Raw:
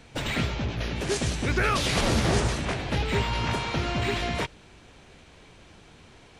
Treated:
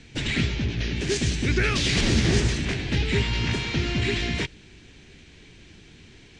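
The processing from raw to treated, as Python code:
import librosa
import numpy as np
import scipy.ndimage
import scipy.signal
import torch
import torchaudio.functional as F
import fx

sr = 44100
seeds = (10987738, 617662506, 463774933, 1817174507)

y = scipy.signal.sosfilt(scipy.signal.butter(4, 7800.0, 'lowpass', fs=sr, output='sos'), x)
y = fx.band_shelf(y, sr, hz=830.0, db=-11.5, octaves=1.7)
y = F.gain(torch.from_numpy(y), 3.5).numpy()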